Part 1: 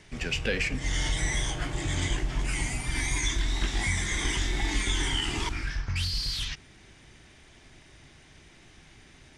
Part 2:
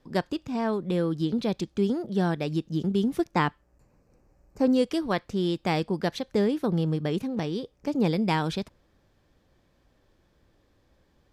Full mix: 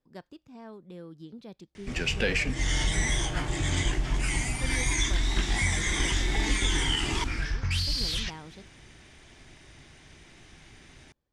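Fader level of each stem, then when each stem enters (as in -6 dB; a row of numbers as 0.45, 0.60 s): +1.5, -18.0 dB; 1.75, 0.00 s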